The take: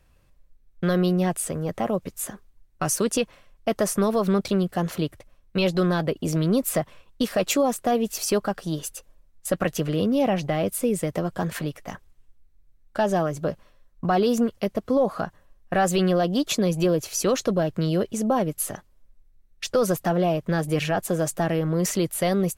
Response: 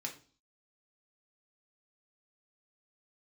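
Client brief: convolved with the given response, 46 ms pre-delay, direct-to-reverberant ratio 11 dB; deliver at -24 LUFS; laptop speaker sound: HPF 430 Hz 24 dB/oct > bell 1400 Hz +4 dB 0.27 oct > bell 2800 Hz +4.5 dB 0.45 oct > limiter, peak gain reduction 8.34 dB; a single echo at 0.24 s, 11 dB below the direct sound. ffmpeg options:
-filter_complex "[0:a]aecho=1:1:240:0.282,asplit=2[a][b];[1:a]atrim=start_sample=2205,adelay=46[c];[b][c]afir=irnorm=-1:irlink=0,volume=-10.5dB[d];[a][d]amix=inputs=2:normalize=0,highpass=f=430:w=0.5412,highpass=f=430:w=1.3066,equalizer=f=1.4k:t=o:w=0.27:g=4,equalizer=f=2.8k:t=o:w=0.45:g=4.5,volume=6dB,alimiter=limit=-13.5dB:level=0:latency=1"

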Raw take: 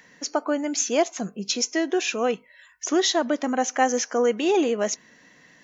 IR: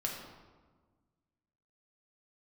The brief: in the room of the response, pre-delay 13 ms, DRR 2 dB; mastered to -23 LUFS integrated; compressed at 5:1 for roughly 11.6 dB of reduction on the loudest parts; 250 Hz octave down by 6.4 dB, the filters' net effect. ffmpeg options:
-filter_complex "[0:a]equalizer=f=250:t=o:g=-9,acompressor=threshold=-30dB:ratio=5,asplit=2[a][b];[1:a]atrim=start_sample=2205,adelay=13[c];[b][c]afir=irnorm=-1:irlink=0,volume=-4.5dB[d];[a][d]amix=inputs=2:normalize=0,volume=8dB"

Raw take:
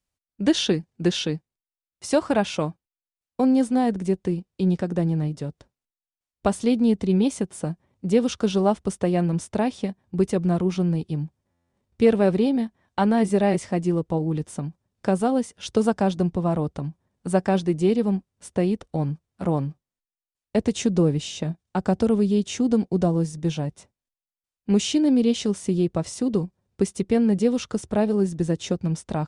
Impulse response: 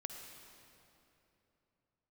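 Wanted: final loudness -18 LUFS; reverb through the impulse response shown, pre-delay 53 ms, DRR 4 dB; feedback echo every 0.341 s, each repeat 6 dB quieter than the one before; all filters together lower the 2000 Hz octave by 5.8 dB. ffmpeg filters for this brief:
-filter_complex "[0:a]equalizer=f=2k:t=o:g=-8,aecho=1:1:341|682|1023|1364|1705|2046:0.501|0.251|0.125|0.0626|0.0313|0.0157,asplit=2[a][b];[1:a]atrim=start_sample=2205,adelay=53[c];[b][c]afir=irnorm=-1:irlink=0,volume=-2dB[d];[a][d]amix=inputs=2:normalize=0,volume=3.5dB"

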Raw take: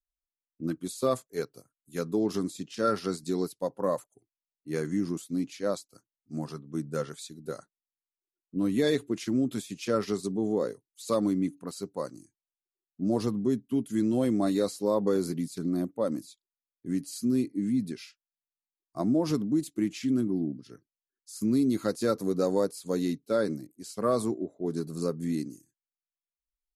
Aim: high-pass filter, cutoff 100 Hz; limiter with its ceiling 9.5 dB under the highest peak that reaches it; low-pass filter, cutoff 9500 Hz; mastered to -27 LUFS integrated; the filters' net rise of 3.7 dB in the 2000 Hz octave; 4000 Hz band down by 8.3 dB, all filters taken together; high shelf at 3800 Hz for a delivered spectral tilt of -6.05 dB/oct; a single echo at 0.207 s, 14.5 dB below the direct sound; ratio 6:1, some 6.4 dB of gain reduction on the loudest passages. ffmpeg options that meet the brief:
-af "highpass=100,lowpass=9.5k,equalizer=f=2k:t=o:g=8,highshelf=f=3.8k:g=-8,equalizer=f=4k:t=o:g=-7,acompressor=threshold=-28dB:ratio=6,alimiter=level_in=3.5dB:limit=-24dB:level=0:latency=1,volume=-3.5dB,aecho=1:1:207:0.188,volume=11dB"

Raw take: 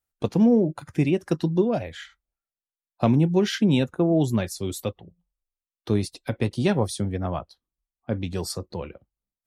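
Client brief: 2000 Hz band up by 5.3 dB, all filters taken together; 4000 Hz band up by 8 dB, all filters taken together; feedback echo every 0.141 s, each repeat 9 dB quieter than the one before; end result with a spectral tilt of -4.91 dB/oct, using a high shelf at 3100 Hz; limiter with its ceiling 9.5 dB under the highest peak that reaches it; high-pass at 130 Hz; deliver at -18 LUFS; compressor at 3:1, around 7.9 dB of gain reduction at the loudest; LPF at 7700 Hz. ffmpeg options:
-af "highpass=130,lowpass=7.7k,equalizer=f=2k:t=o:g=3.5,highshelf=f=3.1k:g=3,equalizer=f=4k:t=o:g=7,acompressor=threshold=-26dB:ratio=3,alimiter=limit=-20.5dB:level=0:latency=1,aecho=1:1:141|282|423|564:0.355|0.124|0.0435|0.0152,volume=13.5dB"

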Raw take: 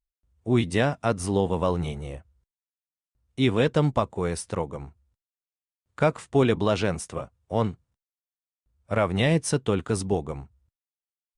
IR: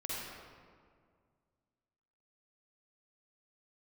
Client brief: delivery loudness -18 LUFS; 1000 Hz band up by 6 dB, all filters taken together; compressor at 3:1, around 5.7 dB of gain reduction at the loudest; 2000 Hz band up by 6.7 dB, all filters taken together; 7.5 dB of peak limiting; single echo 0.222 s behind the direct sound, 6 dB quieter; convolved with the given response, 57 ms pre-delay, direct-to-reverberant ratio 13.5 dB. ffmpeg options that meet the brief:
-filter_complex "[0:a]equalizer=f=1k:t=o:g=6,equalizer=f=2k:t=o:g=6.5,acompressor=threshold=-21dB:ratio=3,alimiter=limit=-14dB:level=0:latency=1,aecho=1:1:222:0.501,asplit=2[a][b];[1:a]atrim=start_sample=2205,adelay=57[c];[b][c]afir=irnorm=-1:irlink=0,volume=-16dB[d];[a][d]amix=inputs=2:normalize=0,volume=10dB"

